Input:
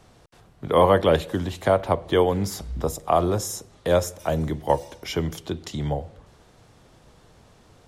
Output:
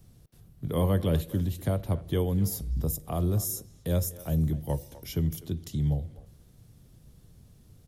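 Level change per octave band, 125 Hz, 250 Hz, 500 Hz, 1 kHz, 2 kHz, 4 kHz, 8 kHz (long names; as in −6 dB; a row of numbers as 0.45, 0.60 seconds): +1.5, −3.0, −12.5, −17.5, −15.0, −10.0, −3.0 decibels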